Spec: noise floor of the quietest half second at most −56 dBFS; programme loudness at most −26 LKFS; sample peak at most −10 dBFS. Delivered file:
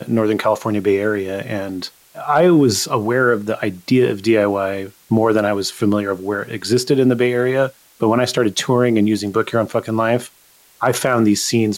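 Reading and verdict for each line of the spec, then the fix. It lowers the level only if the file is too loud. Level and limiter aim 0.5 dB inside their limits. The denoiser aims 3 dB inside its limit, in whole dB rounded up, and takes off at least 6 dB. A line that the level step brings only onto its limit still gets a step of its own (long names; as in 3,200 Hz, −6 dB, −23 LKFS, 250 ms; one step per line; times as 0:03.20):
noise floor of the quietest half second −51 dBFS: out of spec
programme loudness −17.5 LKFS: out of spec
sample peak −4.5 dBFS: out of spec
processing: level −9 dB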